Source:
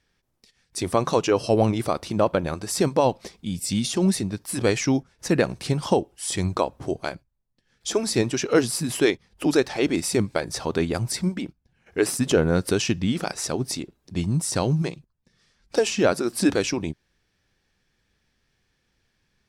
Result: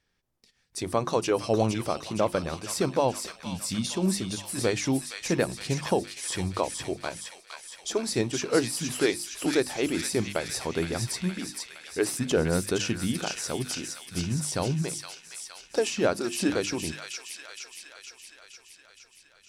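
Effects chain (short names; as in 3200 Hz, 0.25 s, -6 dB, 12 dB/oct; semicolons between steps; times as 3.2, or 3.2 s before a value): notches 50/100/150/200/250/300/350 Hz; on a send: thin delay 0.466 s, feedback 64%, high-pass 1700 Hz, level -3.5 dB; on the sum: gain -4.5 dB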